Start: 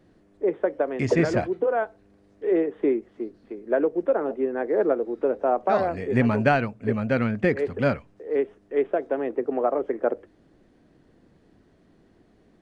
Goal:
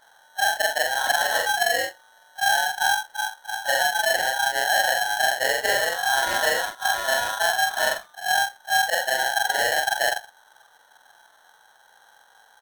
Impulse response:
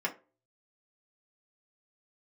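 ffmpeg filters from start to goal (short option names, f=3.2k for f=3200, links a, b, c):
-filter_complex "[0:a]afftfilt=real='re':imag='-im':win_size=4096:overlap=0.75,firequalizer=gain_entry='entry(200,0);entry(380,13);entry(620,9);entry(1600,-10);entry(3100,-17)':delay=0.05:min_phase=1,aresample=32000,aresample=44100,acrossover=split=170|480[a][b][c];[a]acompressor=threshold=-39dB:ratio=4[d];[b]acompressor=threshold=-26dB:ratio=4[e];[c]acompressor=threshold=-24dB:ratio=4[f];[d][e][f]amix=inputs=3:normalize=0,aeval=exprs='val(0)*sgn(sin(2*PI*1200*n/s))':c=same"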